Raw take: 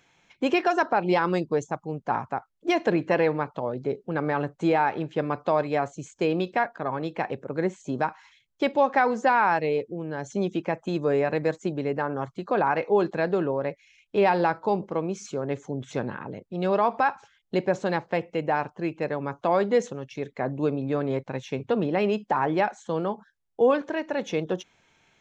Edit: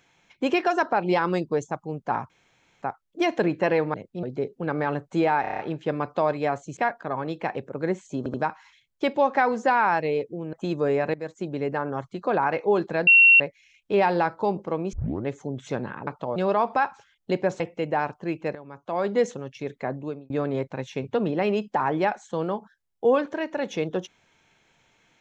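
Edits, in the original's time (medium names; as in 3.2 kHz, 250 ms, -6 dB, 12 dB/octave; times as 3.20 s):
2.30 s: insert room tone 0.52 s
3.42–3.71 s: swap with 16.31–16.60 s
4.89 s: stutter 0.03 s, 7 plays
6.07–6.52 s: delete
7.93 s: stutter 0.08 s, 3 plays
10.12–10.77 s: delete
11.38–11.85 s: fade in, from -13.5 dB
13.31–13.64 s: bleep 2.73 kHz -10.5 dBFS
15.17 s: tape start 0.34 s
17.84–18.16 s: delete
19.11–19.71 s: fade in quadratic, from -13.5 dB
20.38–20.86 s: fade out linear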